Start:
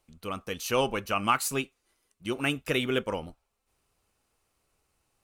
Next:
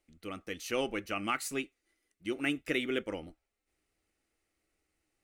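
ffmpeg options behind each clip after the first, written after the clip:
-af "equalizer=f=125:t=o:w=0.33:g=-9,equalizer=f=315:t=o:w=0.33:g=10,equalizer=f=1k:t=o:w=0.33:g=-10,equalizer=f=2k:t=o:w=0.33:g=9,equalizer=f=12.5k:t=o:w=0.33:g=-6,volume=-7dB"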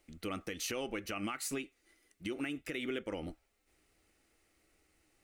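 -af "acompressor=threshold=-40dB:ratio=5,alimiter=level_in=12.5dB:limit=-24dB:level=0:latency=1:release=94,volume=-12.5dB,volume=8.5dB"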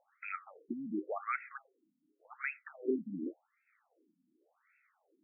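-af "afftfilt=real='re*between(b*sr/1024,200*pow(1900/200,0.5+0.5*sin(2*PI*0.89*pts/sr))/1.41,200*pow(1900/200,0.5+0.5*sin(2*PI*0.89*pts/sr))*1.41)':imag='im*between(b*sr/1024,200*pow(1900/200,0.5+0.5*sin(2*PI*0.89*pts/sr))/1.41,200*pow(1900/200,0.5+0.5*sin(2*PI*0.89*pts/sr))*1.41)':win_size=1024:overlap=0.75,volume=7.5dB"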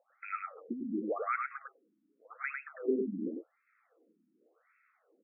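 -af "highpass=170,equalizer=f=210:t=q:w=4:g=5,equalizer=f=480:t=q:w=4:g=9,equalizer=f=880:t=q:w=4:g=-8,equalizer=f=1.3k:t=q:w=4:g=5,lowpass=f=2.4k:w=0.5412,lowpass=f=2.4k:w=1.3066,aecho=1:1:101:0.631"

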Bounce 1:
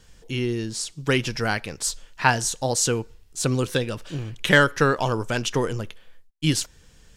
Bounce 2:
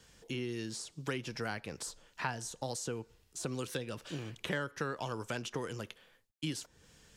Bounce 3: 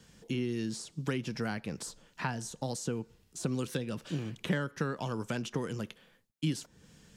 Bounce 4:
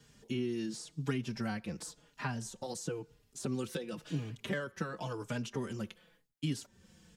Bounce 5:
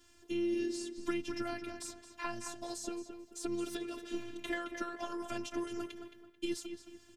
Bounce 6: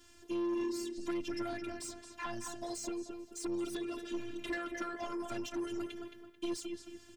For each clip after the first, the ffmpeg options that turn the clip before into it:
-filter_complex "[0:a]highpass=f=130:p=1,acrossover=split=200|1300[a][b][c];[a]acompressor=threshold=-41dB:ratio=4[d];[b]acompressor=threshold=-35dB:ratio=4[e];[c]acompressor=threshold=-39dB:ratio=4[f];[d][e][f]amix=inputs=3:normalize=0,volume=-4dB"
-af "equalizer=f=190:t=o:w=1.3:g=10"
-filter_complex "[0:a]asplit=2[a][b];[b]adelay=4.4,afreqshift=-0.94[c];[a][c]amix=inputs=2:normalize=1"
-filter_complex "[0:a]asplit=2[a][b];[b]adelay=219,lowpass=f=3.6k:p=1,volume=-8dB,asplit=2[c][d];[d]adelay=219,lowpass=f=3.6k:p=1,volume=0.36,asplit=2[e][f];[f]adelay=219,lowpass=f=3.6k:p=1,volume=0.36,asplit=2[g][h];[h]adelay=219,lowpass=f=3.6k:p=1,volume=0.36[i];[a][c][e][g][i]amix=inputs=5:normalize=0,afftfilt=real='hypot(re,im)*cos(PI*b)':imag='0':win_size=512:overlap=0.75,volume=3.5dB"
-af "asoftclip=type=tanh:threshold=-34.5dB,volume=3.5dB"

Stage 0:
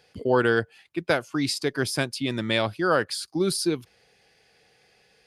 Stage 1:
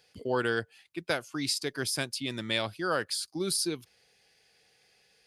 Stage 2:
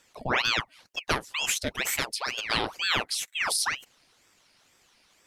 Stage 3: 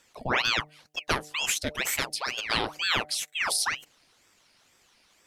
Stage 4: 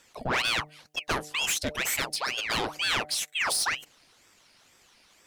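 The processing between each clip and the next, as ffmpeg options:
-af "highshelf=f=2.7k:g=9,volume=-8.5dB"
-af "aeval=exprs='val(0)*sin(2*PI*1600*n/s+1600*0.9/2.1*sin(2*PI*2.1*n/s))':c=same,volume=5.5dB"
-af "bandreject=f=150.7:t=h:w=4,bandreject=f=301.4:t=h:w=4,bandreject=f=452.1:t=h:w=4,bandreject=f=602.8:t=h:w=4,bandreject=f=753.5:t=h:w=4"
-af "asoftclip=type=tanh:threshold=-23.5dB,volume=3dB"

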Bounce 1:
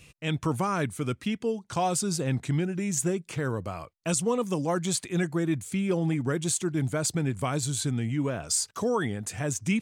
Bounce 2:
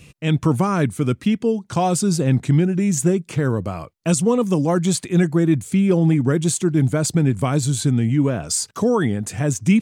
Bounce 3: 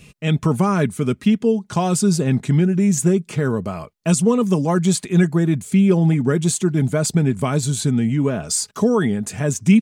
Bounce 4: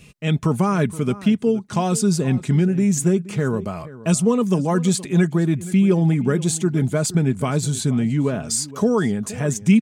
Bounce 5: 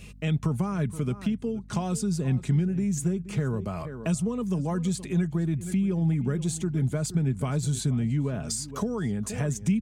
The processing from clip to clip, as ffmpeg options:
-af "equalizer=f=190:w=0.47:g=7,volume=4.5dB"
-af "aecho=1:1:4.8:0.4"
-filter_complex "[0:a]asplit=2[a][b];[b]adelay=472.3,volume=-17dB,highshelf=f=4k:g=-10.6[c];[a][c]amix=inputs=2:normalize=0,volume=-1.5dB"
-filter_complex "[0:a]acrossover=split=130[a][b];[b]acompressor=threshold=-30dB:ratio=5[c];[a][c]amix=inputs=2:normalize=0,aeval=exprs='val(0)+0.00447*(sin(2*PI*50*n/s)+sin(2*PI*2*50*n/s)/2+sin(2*PI*3*50*n/s)/3+sin(2*PI*4*50*n/s)/4+sin(2*PI*5*50*n/s)/5)':c=same"

